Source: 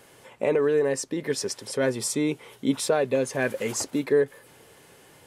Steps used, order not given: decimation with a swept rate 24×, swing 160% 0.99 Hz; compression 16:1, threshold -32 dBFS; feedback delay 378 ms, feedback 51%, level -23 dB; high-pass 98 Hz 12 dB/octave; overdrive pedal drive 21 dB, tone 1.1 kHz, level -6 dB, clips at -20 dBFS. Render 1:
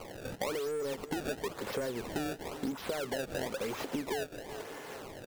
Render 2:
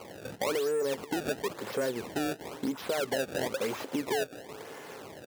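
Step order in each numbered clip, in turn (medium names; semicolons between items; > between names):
high-pass > overdrive pedal > decimation with a swept rate > feedback delay > compression; compression > feedback delay > overdrive pedal > decimation with a swept rate > high-pass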